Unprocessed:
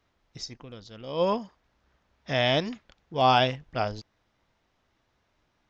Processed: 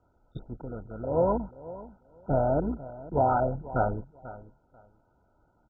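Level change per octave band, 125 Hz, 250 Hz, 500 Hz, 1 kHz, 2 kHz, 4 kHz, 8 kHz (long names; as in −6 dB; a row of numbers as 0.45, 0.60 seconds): +1.5 dB, +1.5 dB, +0.5 dB, −2.5 dB, −11.0 dB, below −35 dB, can't be measured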